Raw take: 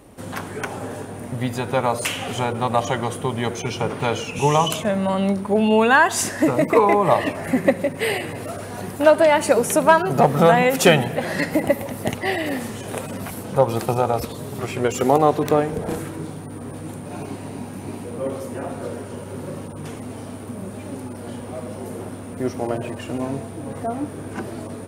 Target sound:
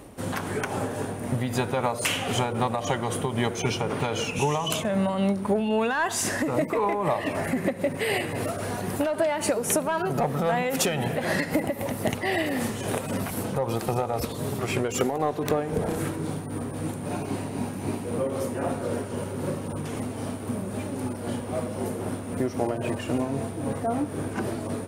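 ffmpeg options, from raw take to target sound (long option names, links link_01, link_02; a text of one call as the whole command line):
ffmpeg -i in.wav -filter_complex "[0:a]asplit=2[link_01][link_02];[link_02]acontrast=61,volume=2dB[link_03];[link_01][link_03]amix=inputs=2:normalize=0,alimiter=limit=-0.5dB:level=0:latency=1:release=252,acompressor=threshold=-12dB:ratio=6,tremolo=f=3.8:d=0.38,volume=-8dB" out.wav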